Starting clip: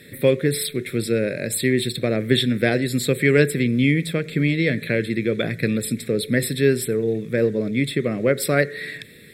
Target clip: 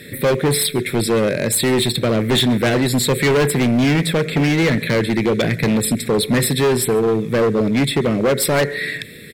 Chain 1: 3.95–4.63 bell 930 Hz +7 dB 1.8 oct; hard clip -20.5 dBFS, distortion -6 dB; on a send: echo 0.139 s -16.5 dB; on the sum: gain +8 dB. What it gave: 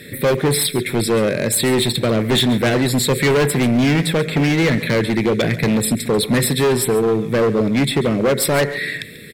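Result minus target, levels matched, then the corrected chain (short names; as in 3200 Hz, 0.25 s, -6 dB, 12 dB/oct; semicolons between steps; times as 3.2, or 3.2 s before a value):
echo-to-direct +9 dB
3.95–4.63 bell 930 Hz +7 dB 1.8 oct; hard clip -20.5 dBFS, distortion -6 dB; on a send: echo 0.139 s -25.5 dB; on the sum: gain +8 dB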